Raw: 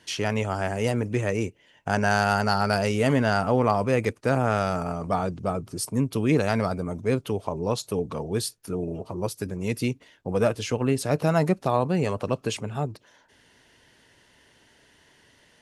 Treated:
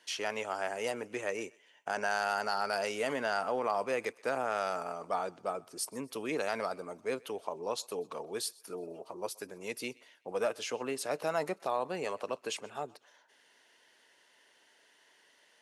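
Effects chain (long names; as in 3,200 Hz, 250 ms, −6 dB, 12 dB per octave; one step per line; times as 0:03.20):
brickwall limiter −12 dBFS, peak gain reduction 4 dB
high-pass filter 470 Hz 12 dB per octave
feedback echo with a high-pass in the loop 126 ms, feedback 46%, high-pass 670 Hz, level −23.5 dB
level −5.5 dB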